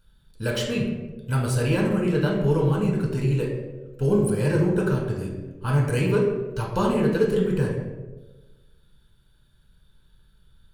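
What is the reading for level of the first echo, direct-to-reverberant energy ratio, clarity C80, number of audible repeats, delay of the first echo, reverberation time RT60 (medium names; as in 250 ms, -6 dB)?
no echo, -2.0 dB, 5.5 dB, no echo, no echo, 1.2 s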